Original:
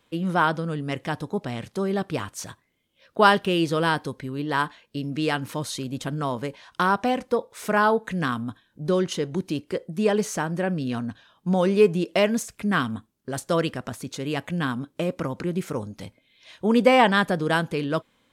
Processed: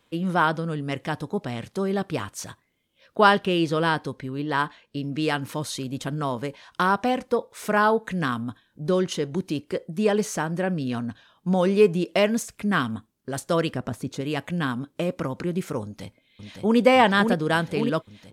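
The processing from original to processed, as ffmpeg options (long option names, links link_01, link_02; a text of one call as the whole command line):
ffmpeg -i in.wav -filter_complex "[0:a]asettb=1/sr,asplit=3[link_01][link_02][link_03];[link_01]atrim=end=3.214[link_04];[link_02]atrim=start=3.21:end=5.18,asetpts=PTS-STARTPTS,afade=type=in:duration=0.004:curve=qsin,afade=type=out:start_time=1.966:duration=0.004:curve=qsin,highshelf=frequency=8700:gain=-8[link_05];[link_03]atrim=start=5.176[link_06];[link_04][link_05]acrossfade=duration=0.004:curve1=hsin:curve2=qsin[link_07];[link_07][link_06]acrossfade=duration=0.004:curve1=qsin:curve2=hsin,asettb=1/sr,asplit=3[link_08][link_09][link_10];[link_08]atrim=end=13.754[link_11];[link_09]atrim=start=13.75:end=14.21,asetpts=PTS-STARTPTS,afade=type=in:duration=0.004:curve=qsin,afade=type=out:start_time=0.456:duration=0.004:curve=qsin,tiltshelf=frequency=970:gain=4.5[link_12];[link_10]atrim=start=14.206[link_13];[link_11][link_12]acrossfade=duration=0.004:curve1=hsin:curve2=qsin[link_14];[link_14][link_13]acrossfade=duration=0.004:curve1=qsin:curve2=hsin,asplit=2[link_15][link_16];[link_16]afade=type=in:start_time=15.83:duration=0.01,afade=type=out:start_time=16.77:duration=0.01,aecho=0:1:560|1120|1680|2240|2800|3360|3920|4480|5040|5600|6160|6720:0.595662|0.47653|0.381224|0.304979|0.243983|0.195187|0.156149|0.124919|0.0999355|0.0799484|0.0639587|0.051167[link_17];[link_15][link_17]amix=inputs=2:normalize=0" out.wav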